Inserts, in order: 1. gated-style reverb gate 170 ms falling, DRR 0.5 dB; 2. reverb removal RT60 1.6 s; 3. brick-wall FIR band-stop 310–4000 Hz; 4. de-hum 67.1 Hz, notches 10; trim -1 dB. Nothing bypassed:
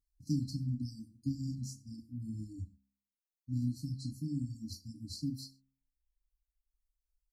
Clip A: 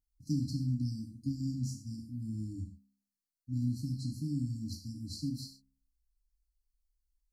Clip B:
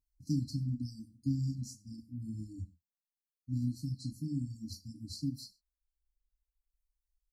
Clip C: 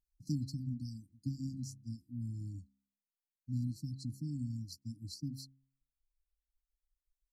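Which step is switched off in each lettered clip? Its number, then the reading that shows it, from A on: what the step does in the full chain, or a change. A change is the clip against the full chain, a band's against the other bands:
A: 2, crest factor change -2.5 dB; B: 4, momentary loudness spread change +2 LU; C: 1, momentary loudness spread change -2 LU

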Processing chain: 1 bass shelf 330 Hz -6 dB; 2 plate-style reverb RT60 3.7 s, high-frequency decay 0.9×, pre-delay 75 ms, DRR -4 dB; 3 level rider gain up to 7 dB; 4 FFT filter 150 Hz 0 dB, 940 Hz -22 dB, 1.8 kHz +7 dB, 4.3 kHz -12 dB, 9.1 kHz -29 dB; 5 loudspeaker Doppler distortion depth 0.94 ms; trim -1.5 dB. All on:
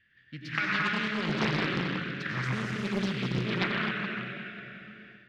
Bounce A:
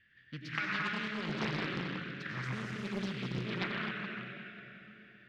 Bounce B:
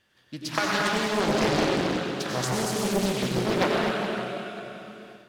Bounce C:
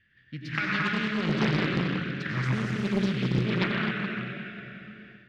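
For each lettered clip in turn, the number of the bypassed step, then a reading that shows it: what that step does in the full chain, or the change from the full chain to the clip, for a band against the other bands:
3, momentary loudness spread change -2 LU; 4, 8 kHz band +13.5 dB; 1, 125 Hz band +5.0 dB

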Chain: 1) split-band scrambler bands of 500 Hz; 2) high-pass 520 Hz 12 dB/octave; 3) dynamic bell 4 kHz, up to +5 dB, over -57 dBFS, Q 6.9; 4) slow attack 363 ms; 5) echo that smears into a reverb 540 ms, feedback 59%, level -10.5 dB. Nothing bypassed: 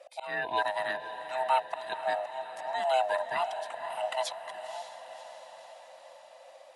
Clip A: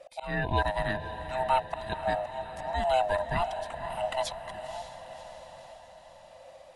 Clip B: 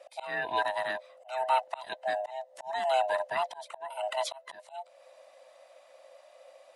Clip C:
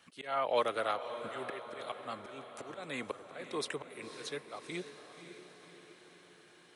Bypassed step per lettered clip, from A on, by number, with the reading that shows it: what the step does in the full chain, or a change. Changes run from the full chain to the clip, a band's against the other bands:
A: 2, 250 Hz band +13.0 dB; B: 5, echo-to-direct -8.5 dB to none; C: 1, 250 Hz band +13.5 dB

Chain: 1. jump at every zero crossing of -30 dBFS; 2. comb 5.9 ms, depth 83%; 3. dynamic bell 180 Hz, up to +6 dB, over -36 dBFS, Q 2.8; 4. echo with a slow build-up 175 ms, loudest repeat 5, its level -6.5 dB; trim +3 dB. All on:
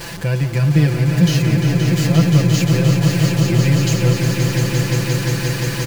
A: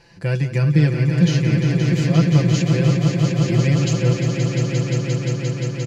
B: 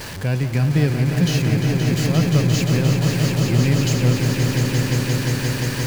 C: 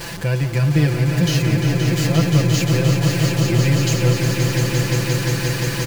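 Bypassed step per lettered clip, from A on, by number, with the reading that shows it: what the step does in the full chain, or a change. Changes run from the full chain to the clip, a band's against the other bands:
1, distortion -11 dB; 2, loudness change -3.0 LU; 3, momentary loudness spread change -1 LU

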